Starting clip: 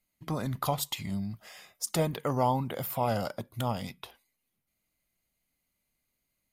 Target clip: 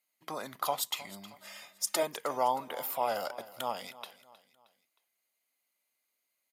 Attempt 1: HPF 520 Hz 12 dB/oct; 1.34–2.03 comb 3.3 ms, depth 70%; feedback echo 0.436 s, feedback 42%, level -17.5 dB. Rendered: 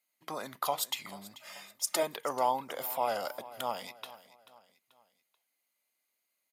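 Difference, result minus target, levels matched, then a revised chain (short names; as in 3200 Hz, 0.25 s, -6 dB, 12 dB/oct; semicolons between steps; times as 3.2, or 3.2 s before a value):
echo 0.123 s late
HPF 520 Hz 12 dB/oct; 1.34–2.03 comb 3.3 ms, depth 70%; feedback echo 0.313 s, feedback 42%, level -17.5 dB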